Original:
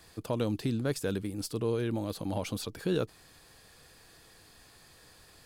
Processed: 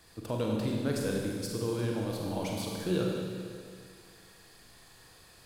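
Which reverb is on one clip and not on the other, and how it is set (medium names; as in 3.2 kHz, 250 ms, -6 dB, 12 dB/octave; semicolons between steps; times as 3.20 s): Schroeder reverb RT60 2.1 s, combs from 33 ms, DRR -1.5 dB; trim -3 dB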